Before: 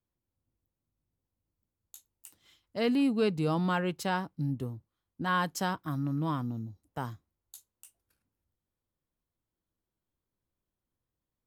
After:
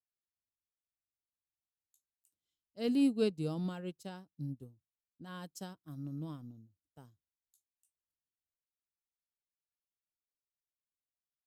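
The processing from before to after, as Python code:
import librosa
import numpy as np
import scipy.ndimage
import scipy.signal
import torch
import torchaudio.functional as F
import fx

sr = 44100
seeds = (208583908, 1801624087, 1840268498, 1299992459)

y = fx.graphic_eq_10(x, sr, hz=(1000, 2000, 8000), db=(-9, -8, 4))
y = fx.upward_expand(y, sr, threshold_db=-42.0, expansion=2.5)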